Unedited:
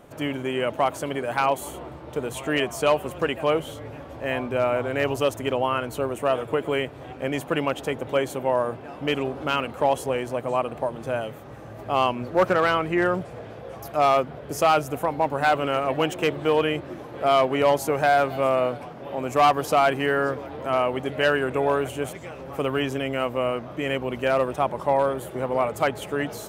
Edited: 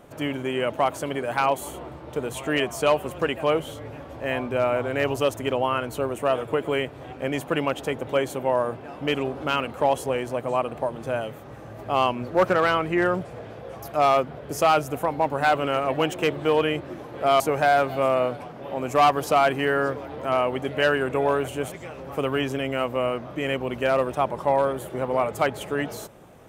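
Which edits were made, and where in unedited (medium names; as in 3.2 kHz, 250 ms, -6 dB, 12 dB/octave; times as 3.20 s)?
17.40–17.81 s: delete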